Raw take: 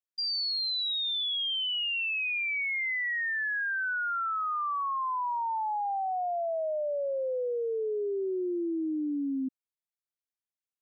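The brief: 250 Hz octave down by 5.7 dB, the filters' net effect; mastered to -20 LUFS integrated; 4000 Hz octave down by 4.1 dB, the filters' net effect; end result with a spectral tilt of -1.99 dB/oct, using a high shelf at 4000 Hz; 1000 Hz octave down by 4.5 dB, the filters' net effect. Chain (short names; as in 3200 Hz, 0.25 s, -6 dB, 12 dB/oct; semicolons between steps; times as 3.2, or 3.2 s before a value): bell 250 Hz -7.5 dB; bell 1000 Hz -5.5 dB; high shelf 4000 Hz +6.5 dB; bell 4000 Hz -8.5 dB; gain +13 dB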